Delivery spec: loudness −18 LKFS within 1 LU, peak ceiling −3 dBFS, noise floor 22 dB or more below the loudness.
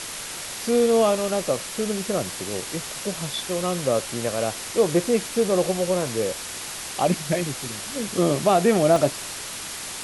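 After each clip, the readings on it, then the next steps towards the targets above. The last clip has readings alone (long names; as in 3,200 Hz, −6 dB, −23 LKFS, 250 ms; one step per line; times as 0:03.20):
number of dropouts 1; longest dropout 2.1 ms; background noise floor −34 dBFS; target noise floor −46 dBFS; integrated loudness −24.0 LKFS; sample peak −6.5 dBFS; target loudness −18.0 LKFS
→ repair the gap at 0:08.96, 2.1 ms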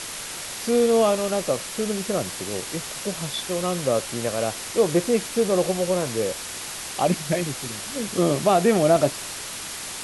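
number of dropouts 0; background noise floor −34 dBFS; target noise floor −46 dBFS
→ noise reduction from a noise print 12 dB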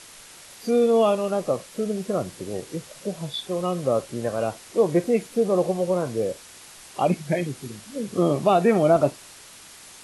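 background noise floor −46 dBFS; integrated loudness −24.0 LKFS; sample peak −7.0 dBFS; target loudness −18.0 LKFS
→ level +6 dB
brickwall limiter −3 dBFS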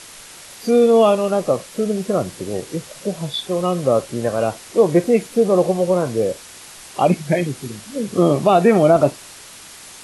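integrated loudness −18.0 LKFS; sample peak −3.0 dBFS; background noise floor −40 dBFS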